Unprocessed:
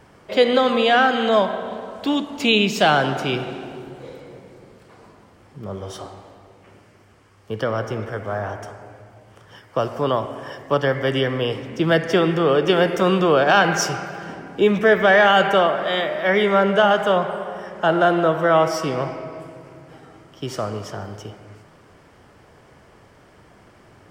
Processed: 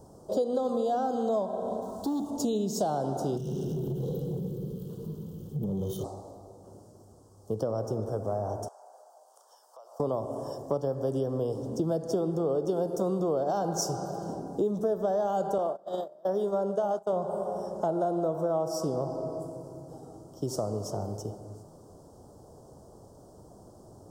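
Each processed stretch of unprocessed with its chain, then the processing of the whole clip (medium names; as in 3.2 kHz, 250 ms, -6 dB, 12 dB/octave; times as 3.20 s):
1.82–2.31 s: companding laws mixed up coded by mu + peaking EQ 530 Hz -10 dB 0.53 oct + transformer saturation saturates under 720 Hz
3.37–6.04 s: FFT filter 110 Hz 0 dB, 160 Hz +15 dB, 270 Hz -4 dB, 450 Hz +2 dB, 690 Hz -22 dB, 1.3 kHz -9 dB, 3.1 kHz +13 dB, 6.9 kHz -27 dB, 14 kHz +8 dB + compression 10:1, threshold -31 dBFS + waveshaping leveller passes 2
8.68–10.00 s: high-pass 720 Hz 24 dB/octave + compression 5:1, threshold -45 dBFS
15.58–17.13 s: gate -21 dBFS, range -26 dB + bass shelf 180 Hz -8.5 dB
whole clip: Chebyshev band-stop 710–6500 Hz, order 2; treble shelf 7.2 kHz +3.5 dB; compression 4:1, threshold -27 dBFS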